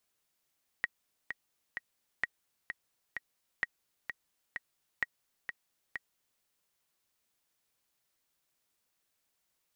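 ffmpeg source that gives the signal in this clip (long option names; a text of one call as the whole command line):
ffmpeg -f lavfi -i "aevalsrc='pow(10,(-16.5-7.5*gte(mod(t,3*60/129),60/129))/20)*sin(2*PI*1900*mod(t,60/129))*exp(-6.91*mod(t,60/129)/0.03)':duration=5.58:sample_rate=44100" out.wav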